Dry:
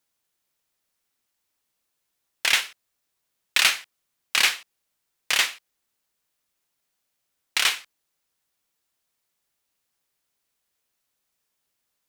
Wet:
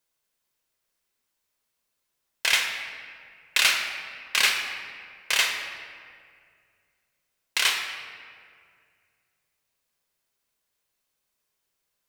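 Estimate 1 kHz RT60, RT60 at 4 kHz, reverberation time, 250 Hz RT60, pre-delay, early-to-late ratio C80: 2.0 s, 1.3 s, 2.1 s, 2.4 s, 4 ms, 6.0 dB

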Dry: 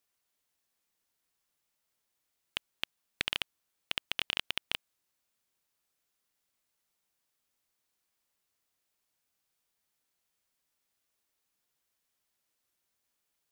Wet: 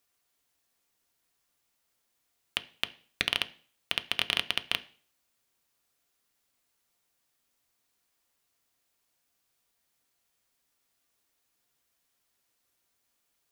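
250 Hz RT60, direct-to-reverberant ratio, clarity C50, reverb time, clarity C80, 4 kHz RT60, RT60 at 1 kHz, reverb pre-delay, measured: 0.45 s, 9.5 dB, 19.0 dB, 0.45 s, 23.5 dB, 0.45 s, 0.45 s, 3 ms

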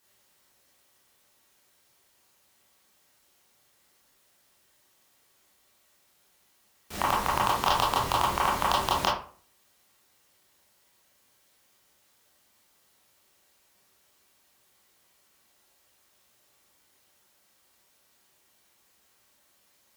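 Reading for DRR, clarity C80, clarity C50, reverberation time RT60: −6.0 dB, 9.5 dB, 4.0 dB, 0.45 s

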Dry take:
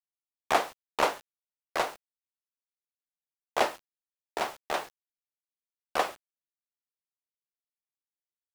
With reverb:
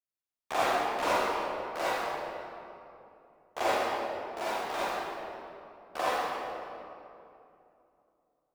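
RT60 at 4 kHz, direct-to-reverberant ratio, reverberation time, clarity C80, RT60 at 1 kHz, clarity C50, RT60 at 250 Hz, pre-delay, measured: 1.6 s, −11.5 dB, 2.8 s, −4.5 dB, 2.6 s, −8.5 dB, 3.2 s, 37 ms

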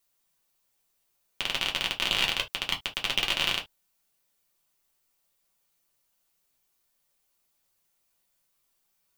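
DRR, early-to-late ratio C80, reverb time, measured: −0.5 dB, 40.5 dB, non-exponential decay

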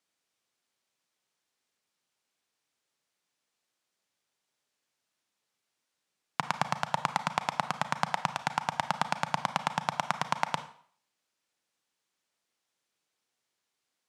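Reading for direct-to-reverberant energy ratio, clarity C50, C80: 10.5 dB, 12.5 dB, 16.0 dB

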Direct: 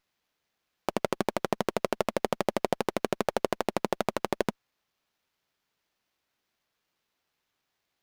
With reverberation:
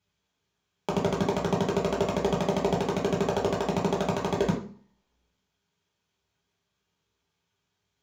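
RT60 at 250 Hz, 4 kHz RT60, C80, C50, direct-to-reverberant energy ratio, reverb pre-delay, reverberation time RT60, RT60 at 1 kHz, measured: 0.55 s, 0.45 s, 11.0 dB, 7.0 dB, −4.5 dB, 3 ms, 0.45 s, 0.50 s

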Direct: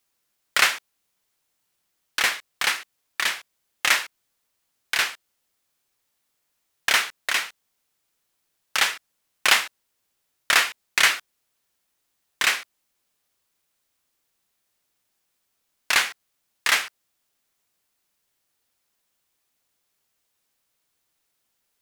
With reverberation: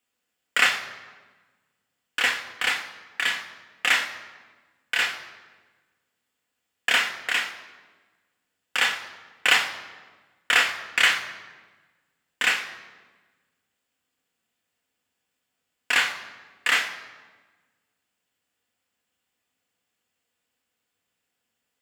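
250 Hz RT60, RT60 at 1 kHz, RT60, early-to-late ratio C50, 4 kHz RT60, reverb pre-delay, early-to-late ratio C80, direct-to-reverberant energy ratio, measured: 1.7 s, 1.3 s, 1.3 s, 10.5 dB, 1.0 s, 3 ms, 12.0 dB, 3.0 dB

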